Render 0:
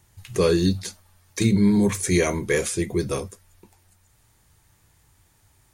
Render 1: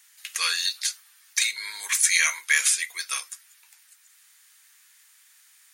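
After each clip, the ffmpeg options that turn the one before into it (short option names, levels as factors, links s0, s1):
-af "highpass=f=1500:w=0.5412,highpass=f=1500:w=1.3066,volume=2.51"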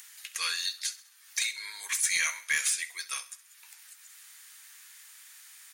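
-af "aecho=1:1:66|132|198|264:0.133|0.0627|0.0295|0.0138,aeval=exprs='0.562*(cos(1*acos(clip(val(0)/0.562,-1,1)))-cos(1*PI/2))+0.0316*(cos(2*acos(clip(val(0)/0.562,-1,1)))-cos(2*PI/2))+0.0398*(cos(5*acos(clip(val(0)/0.562,-1,1)))-cos(5*PI/2))+0.00794*(cos(6*acos(clip(val(0)/0.562,-1,1)))-cos(6*PI/2))+0.01*(cos(8*acos(clip(val(0)/0.562,-1,1)))-cos(8*PI/2))':c=same,acompressor=mode=upward:threshold=0.0251:ratio=2.5,volume=0.376"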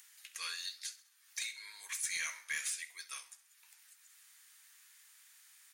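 -af "flanger=delay=9.8:depth=9.4:regen=-79:speed=1:shape=sinusoidal,volume=0.531"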